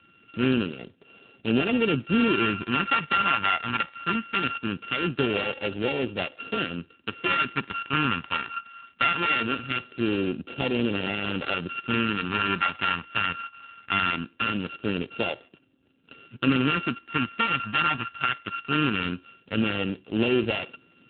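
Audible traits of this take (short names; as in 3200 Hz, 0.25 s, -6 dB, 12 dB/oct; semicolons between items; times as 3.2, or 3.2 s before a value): a buzz of ramps at a fixed pitch in blocks of 32 samples; phasing stages 2, 0.21 Hz, lowest notch 490–1100 Hz; AMR-NB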